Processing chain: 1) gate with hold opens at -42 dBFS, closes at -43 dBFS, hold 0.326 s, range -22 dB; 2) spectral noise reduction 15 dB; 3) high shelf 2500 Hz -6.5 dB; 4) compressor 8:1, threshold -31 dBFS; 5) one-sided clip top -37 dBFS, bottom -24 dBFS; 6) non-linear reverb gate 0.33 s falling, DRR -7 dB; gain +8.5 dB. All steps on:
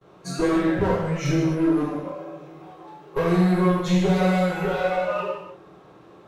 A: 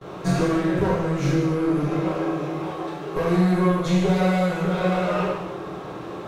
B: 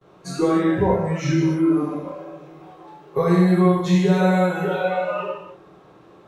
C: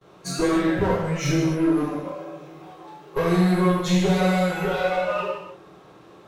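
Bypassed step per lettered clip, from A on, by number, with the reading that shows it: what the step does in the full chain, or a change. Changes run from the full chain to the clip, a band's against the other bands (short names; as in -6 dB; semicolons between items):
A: 2, momentary loudness spread change -4 LU; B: 5, distortion -9 dB; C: 3, 8 kHz band +5.0 dB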